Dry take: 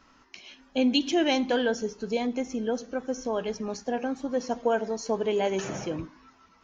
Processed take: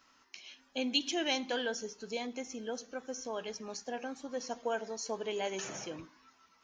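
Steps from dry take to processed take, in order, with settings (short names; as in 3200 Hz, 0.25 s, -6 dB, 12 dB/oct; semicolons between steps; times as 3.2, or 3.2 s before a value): tilt +2.5 dB/oct; gain -7.5 dB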